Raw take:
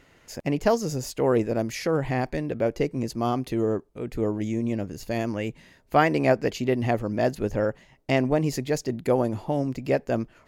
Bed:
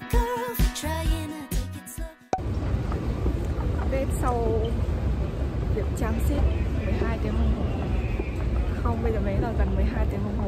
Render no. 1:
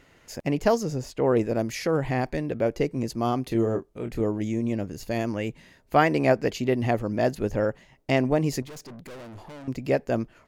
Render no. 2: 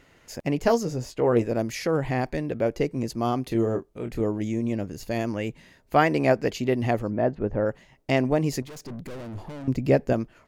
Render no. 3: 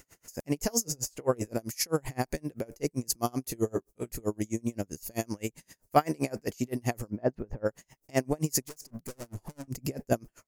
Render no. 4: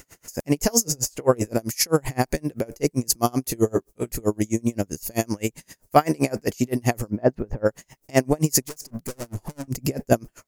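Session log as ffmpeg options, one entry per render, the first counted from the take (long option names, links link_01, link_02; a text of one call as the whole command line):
ffmpeg -i in.wav -filter_complex "[0:a]asettb=1/sr,asplit=3[link_01][link_02][link_03];[link_01]atrim=end=0.834[link_04];[link_02]atrim=start=0.83:end=1.37,asetpts=PTS-STARTPTS,afade=type=in:duration=0.004:curve=qsin,afade=type=out:start_time=0.536:duration=0.004:curve=qsin,lowpass=frequency=2800:poles=1[link_05];[link_03]atrim=start=1.366[link_06];[link_04][link_05]acrossfade=duration=0.004:curve1=hsin:curve2=qsin[link_07];[link_07][link_06]acrossfade=duration=0.004:curve1=qsin:curve2=hsin,asplit=3[link_08][link_09][link_10];[link_08]afade=type=out:start_time=3.5:duration=0.02[link_11];[link_09]asplit=2[link_12][link_13];[link_13]adelay=26,volume=-6.5dB[link_14];[link_12][link_14]amix=inputs=2:normalize=0,afade=type=in:start_time=3.5:duration=0.02,afade=type=out:start_time=4.21:duration=0.02[link_15];[link_10]afade=type=in:start_time=4.21:duration=0.02[link_16];[link_11][link_15][link_16]amix=inputs=3:normalize=0,asettb=1/sr,asplit=3[link_17][link_18][link_19];[link_17]atrim=end=8.624[link_20];[link_18]atrim=start=8.62:end=9.68,asetpts=PTS-STARTPTS,afade=type=in:duration=0.004:curve=qsin,afade=type=out:start_time=1.056:duration=0.004:curve=qsin,aeval=exprs='(tanh(100*val(0)+0.4)-tanh(0.4))/100':channel_layout=same[link_21];[link_19]atrim=start=9.676[link_22];[link_20][link_21]acrossfade=duration=0.004:curve1=hsin:curve2=qsin[link_23];[link_23][link_22]acrossfade=duration=0.004:curve1=qsin:curve2=hsin" out.wav
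ffmpeg -i in.wav -filter_complex "[0:a]asettb=1/sr,asplit=3[link_01][link_02][link_03];[link_01]atrim=end=0.624[link_04];[link_02]atrim=start=0.62:end=1.48,asetpts=PTS-STARTPTS,afade=type=in:duration=0.004:curve=qsin,afade=type=out:start_time=0.856:duration=0.004:curve=qsin,asplit=2[link_05][link_06];[link_06]adelay=17,volume=-9dB[link_07];[link_05][link_07]amix=inputs=2:normalize=0,atrim=end_sample=37926[link_08];[link_03]atrim=start=1.476[link_09];[link_04][link_08]acrossfade=duration=0.004:curve1=hsin:curve2=qsin[link_10];[link_10][link_09]acrossfade=duration=0.004:curve1=qsin:curve2=hsin,asplit=3[link_11][link_12][link_13];[link_11]afade=type=out:start_time=7.09:duration=0.02[link_14];[link_12]lowpass=1500,afade=type=in:start_time=7.09:duration=0.02,afade=type=out:start_time=7.65:duration=0.02[link_15];[link_13]afade=type=in:start_time=7.65:duration=0.02[link_16];[link_14][link_15][link_16]amix=inputs=3:normalize=0,asettb=1/sr,asplit=3[link_17][link_18][link_19];[link_17]atrim=end=8.854[link_20];[link_18]atrim=start=8.85:end=10.13,asetpts=PTS-STARTPTS,afade=type=in:duration=0.004:curve=qsin,afade=type=out:start_time=1.276:duration=0.004:curve=qsin,lowshelf=frequency=370:gain=8.5[link_21];[link_19]atrim=start=10.126[link_22];[link_20][link_21]acrossfade=duration=0.004:curve1=hsin:curve2=qsin[link_23];[link_23][link_22]acrossfade=duration=0.004:curve1=qsin:curve2=hsin" out.wav
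ffmpeg -i in.wav -af "aexciter=amount=9:drive=2.6:freq=5200,aeval=exprs='val(0)*pow(10,-33*(0.5-0.5*cos(2*PI*7.7*n/s))/20)':channel_layout=same" out.wav
ffmpeg -i in.wav -af "volume=8.5dB,alimiter=limit=-1dB:level=0:latency=1" out.wav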